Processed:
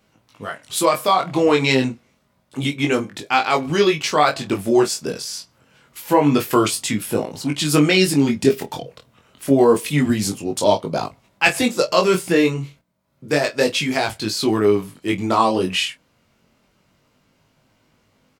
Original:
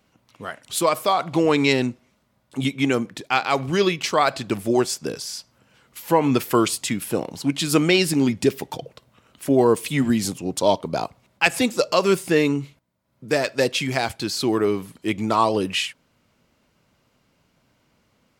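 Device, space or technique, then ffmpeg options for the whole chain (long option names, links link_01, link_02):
double-tracked vocal: -filter_complex "[0:a]asplit=2[link_01][link_02];[link_02]adelay=27,volume=-12.5dB[link_03];[link_01][link_03]amix=inputs=2:normalize=0,flanger=delay=19:depth=3.8:speed=0.28,volume=5.5dB"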